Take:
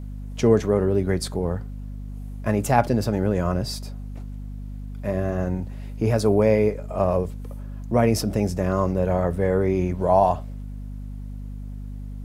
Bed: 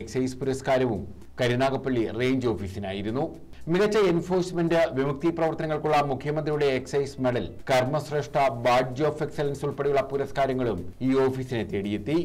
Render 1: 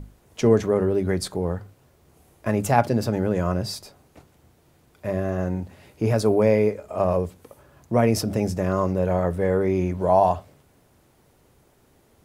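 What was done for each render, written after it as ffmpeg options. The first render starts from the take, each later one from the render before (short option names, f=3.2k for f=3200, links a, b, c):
-af "bandreject=f=50:t=h:w=6,bandreject=f=100:t=h:w=6,bandreject=f=150:t=h:w=6,bandreject=f=200:t=h:w=6,bandreject=f=250:t=h:w=6"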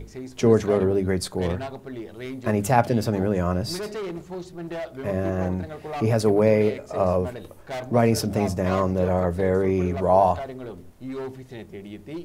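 -filter_complex "[1:a]volume=-10dB[a];[0:a][a]amix=inputs=2:normalize=0"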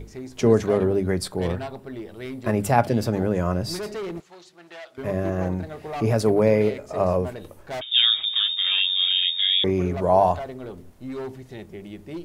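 -filter_complex "[0:a]asettb=1/sr,asplit=3[a][b][c];[a]atrim=end=1.224[d];[b]atrim=start=1.22:end=2.88,asetpts=PTS-STARTPTS,afade=t=in:d=0.004:c=qsin,afade=t=out:st=1.656:d=0.004:c=qsin,bandreject=f=6.5k:w=8.6[e];[c]atrim=start=2.876[f];[d][e]acrossfade=d=0.004:c1=hsin:c2=qsin[g];[g][f]acrossfade=d=0.004:c1=qsin:c2=hsin,asettb=1/sr,asplit=3[h][i][j];[h]atrim=end=4.204[k];[i]atrim=start=4.2:end=4.98,asetpts=PTS-STARTPTS,afade=t=in:d=0.004:c=qsin,afade=t=out:st=0.776:d=0.004:c=qsin,bandpass=f=3.4k:t=q:w=0.57[l];[j]atrim=start=4.976[m];[k][l]acrossfade=d=0.004:c1=hsin:c2=qsin[n];[n][m]acrossfade=d=0.004:c1=qsin:c2=hsin,asettb=1/sr,asplit=3[o][p][q];[o]atrim=end=7.814[r];[p]atrim=start=7.81:end=9.64,asetpts=PTS-STARTPTS,afade=t=in:d=0.004:c=qsin,afade=t=out:st=1.826:d=0.004:c=qsin,lowpass=f=3.2k:t=q:w=0.5098,lowpass=f=3.2k:t=q:w=0.6013,lowpass=f=3.2k:t=q:w=0.9,lowpass=f=3.2k:t=q:w=2.563,afreqshift=-3800[s];[q]atrim=start=9.636[t];[r][s]acrossfade=d=0.004:c1=hsin:c2=qsin[u];[u][t]acrossfade=d=0.004:c1=qsin:c2=hsin"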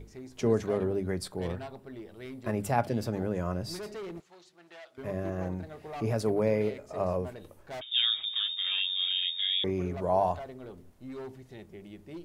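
-af "volume=-8.5dB"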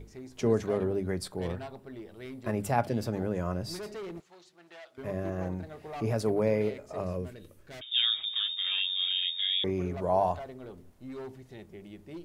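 -filter_complex "[0:a]asettb=1/sr,asplit=3[a][b][c];[a]atrim=end=7.004[d];[b]atrim=start=7:end=7.84,asetpts=PTS-STARTPTS,afade=t=in:d=0.004:c=qsin,afade=t=out:st=0.836:d=0.004:c=qsin,equalizer=f=830:t=o:w=1:g=-13[e];[c]atrim=start=7.836[f];[d][e]acrossfade=d=0.004:c1=hsin:c2=qsin[g];[g][f]acrossfade=d=0.004:c1=qsin:c2=hsin"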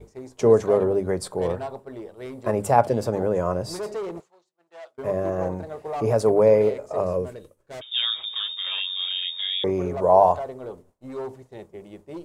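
-af "agate=range=-33dB:threshold=-44dB:ratio=3:detection=peak,equalizer=f=125:t=o:w=1:g=4,equalizer=f=500:t=o:w=1:g=11,equalizer=f=1k:t=o:w=1:g=9,equalizer=f=8k:t=o:w=1:g=8"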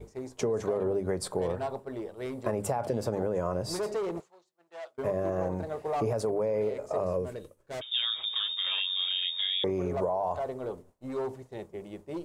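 -af "alimiter=limit=-14.5dB:level=0:latency=1:release=33,acompressor=threshold=-26dB:ratio=6"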